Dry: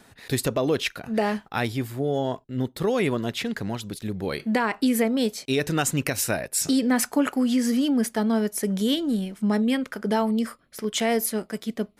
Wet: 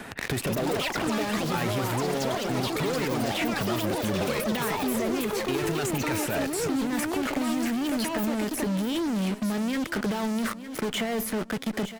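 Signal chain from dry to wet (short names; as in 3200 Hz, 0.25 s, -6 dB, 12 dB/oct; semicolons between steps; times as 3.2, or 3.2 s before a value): resonant high shelf 3300 Hz -6.5 dB, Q 1.5; in parallel at -5 dB: fuzz box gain 43 dB, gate -41 dBFS; on the sum: limiter -19.5 dBFS, peak gain reduction 12 dB; on a send: feedback echo 0.908 s, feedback 43%, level -16 dB; on the sum: echoes that change speed 0.263 s, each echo +6 st, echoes 3; three-band squash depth 70%; gain -5.5 dB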